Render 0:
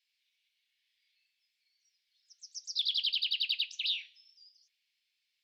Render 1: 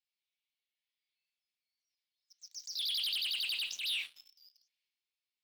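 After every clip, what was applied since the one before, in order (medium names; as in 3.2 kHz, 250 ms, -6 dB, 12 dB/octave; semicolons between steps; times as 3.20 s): waveshaping leveller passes 3; transient shaper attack -6 dB, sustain +6 dB; trim -8 dB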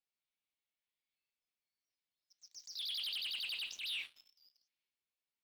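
treble shelf 2.6 kHz -8.5 dB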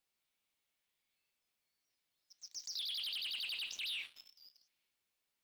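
compression 4:1, threshold -48 dBFS, peak gain reduction 9 dB; trim +7.5 dB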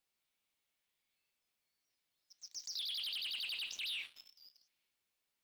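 no audible change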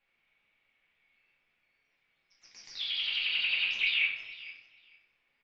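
resonant low-pass 2.3 kHz, resonance Q 3.1; feedback delay 453 ms, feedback 16%, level -17.5 dB; simulated room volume 120 m³, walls mixed, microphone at 1.3 m; trim +4.5 dB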